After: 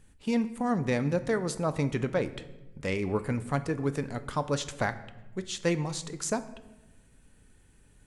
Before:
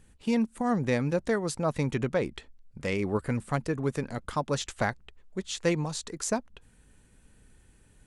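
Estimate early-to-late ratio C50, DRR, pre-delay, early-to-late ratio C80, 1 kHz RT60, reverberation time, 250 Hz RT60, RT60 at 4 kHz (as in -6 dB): 14.5 dB, 11.0 dB, 7 ms, 17.0 dB, 0.95 s, 1.1 s, 1.4 s, 0.75 s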